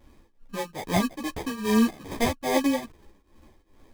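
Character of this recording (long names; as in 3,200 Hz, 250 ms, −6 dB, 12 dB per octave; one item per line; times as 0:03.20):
aliases and images of a low sample rate 1,400 Hz, jitter 0%
tremolo triangle 2.4 Hz, depth 90%
a shimmering, thickened sound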